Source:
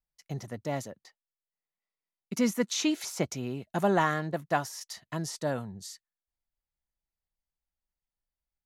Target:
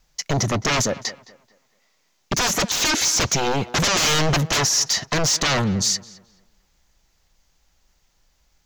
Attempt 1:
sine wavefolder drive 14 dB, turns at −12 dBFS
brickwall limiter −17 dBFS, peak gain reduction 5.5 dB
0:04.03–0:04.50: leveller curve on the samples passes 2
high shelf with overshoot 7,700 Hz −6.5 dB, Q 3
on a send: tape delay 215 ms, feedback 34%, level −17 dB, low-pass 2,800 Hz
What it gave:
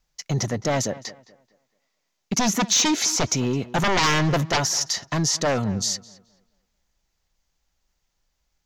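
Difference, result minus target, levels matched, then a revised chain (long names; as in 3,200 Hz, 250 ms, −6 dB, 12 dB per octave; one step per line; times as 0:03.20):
sine wavefolder: distortion −13 dB
sine wavefolder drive 24 dB, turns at −12 dBFS
brickwall limiter −17 dBFS, peak gain reduction 8 dB
0:04.03–0:04.50: leveller curve on the samples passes 2
high shelf with overshoot 7,700 Hz −6.5 dB, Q 3
on a send: tape delay 215 ms, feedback 34%, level −17 dB, low-pass 2,800 Hz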